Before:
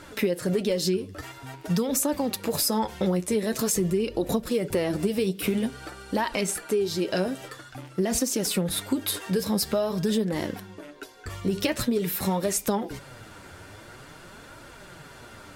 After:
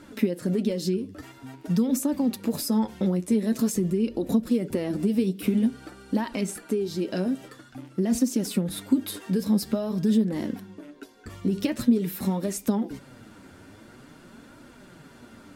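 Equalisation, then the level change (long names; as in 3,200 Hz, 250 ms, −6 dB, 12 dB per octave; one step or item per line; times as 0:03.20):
parametric band 240 Hz +14 dB 0.91 octaves
−7.0 dB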